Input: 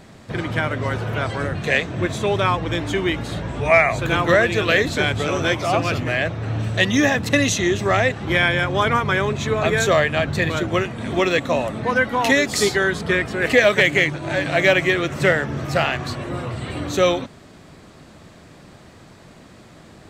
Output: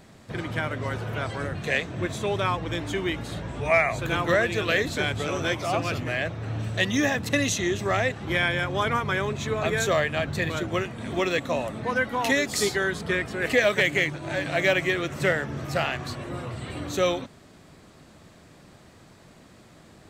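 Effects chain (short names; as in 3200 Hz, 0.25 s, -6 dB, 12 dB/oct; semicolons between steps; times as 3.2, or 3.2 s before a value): high shelf 9000 Hz +6 dB; gain -6.5 dB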